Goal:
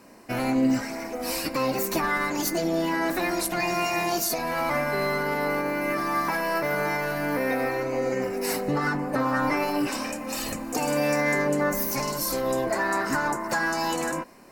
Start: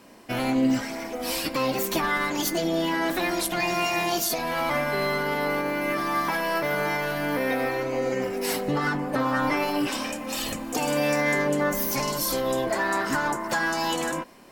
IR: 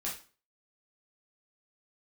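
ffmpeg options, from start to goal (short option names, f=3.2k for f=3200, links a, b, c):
-filter_complex "[0:a]equalizer=f=3.3k:t=o:w=0.31:g=-12,asettb=1/sr,asplit=3[a][b][c];[a]atrim=end=11.834[d];[b]atrim=start=11.83:end=12.43,asetpts=PTS-STARTPTS,afade=t=in:d=0.004:c=qsin,afade=t=out:st=0.596:d=0.004:c=qsin,aeval=exprs='sgn(val(0))*max(abs(val(0))-0.00631,0)':c=same[e];[c]atrim=start=12.426[f];[d][e]acrossfade=d=0.004:c1=hsin:c2=qsin[g];[g][f]acrossfade=d=0.004:c1=qsin:c2=hsin"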